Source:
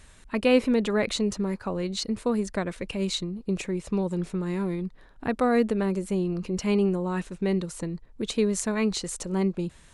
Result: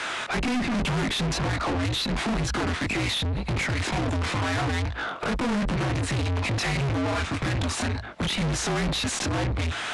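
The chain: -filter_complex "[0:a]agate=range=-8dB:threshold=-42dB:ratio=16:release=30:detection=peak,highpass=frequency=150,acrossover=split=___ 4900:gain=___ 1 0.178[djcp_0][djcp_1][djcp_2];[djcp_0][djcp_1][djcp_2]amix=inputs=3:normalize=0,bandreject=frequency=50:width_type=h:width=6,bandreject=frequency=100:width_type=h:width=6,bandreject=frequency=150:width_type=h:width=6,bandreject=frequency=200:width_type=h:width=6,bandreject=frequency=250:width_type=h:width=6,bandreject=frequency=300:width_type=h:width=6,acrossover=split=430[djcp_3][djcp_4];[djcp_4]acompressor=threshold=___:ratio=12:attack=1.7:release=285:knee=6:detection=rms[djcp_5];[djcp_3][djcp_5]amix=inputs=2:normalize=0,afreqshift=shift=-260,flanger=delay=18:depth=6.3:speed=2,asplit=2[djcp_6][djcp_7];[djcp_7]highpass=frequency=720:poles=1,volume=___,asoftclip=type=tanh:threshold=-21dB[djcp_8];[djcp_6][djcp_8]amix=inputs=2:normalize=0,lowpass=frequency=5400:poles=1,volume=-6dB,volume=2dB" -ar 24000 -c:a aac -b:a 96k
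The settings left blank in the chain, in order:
230, 0.224, -41dB, 49dB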